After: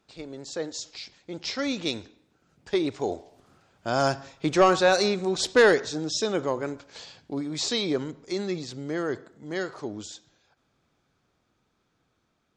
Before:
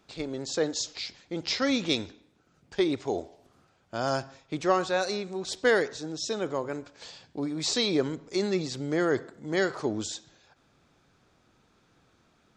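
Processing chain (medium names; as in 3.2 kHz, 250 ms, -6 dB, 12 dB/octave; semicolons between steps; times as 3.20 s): Doppler pass-by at 5.05 s, 7 m/s, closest 7.7 m; in parallel at -10 dB: sine folder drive 7 dB, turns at -10 dBFS; on the sum: trim +1.5 dB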